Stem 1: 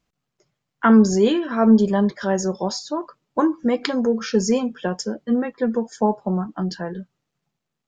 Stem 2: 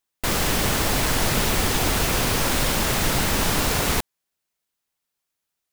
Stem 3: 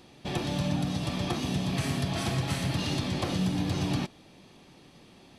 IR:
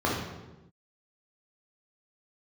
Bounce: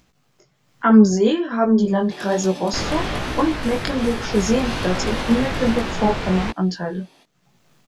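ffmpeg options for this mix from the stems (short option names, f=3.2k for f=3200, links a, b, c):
-filter_complex "[0:a]acompressor=mode=upward:threshold=-38dB:ratio=2.5,volume=-3dB[a];[1:a]lowpass=3.2k,adelay=2500,volume=-6.5dB[b];[2:a]highpass=380,highshelf=f=11k:g=6,adelay=1850,volume=-4.5dB[c];[a][b][c]amix=inputs=3:normalize=0,dynaudnorm=f=140:g=9:m=11dB,flanger=delay=16:depth=6.8:speed=1.2"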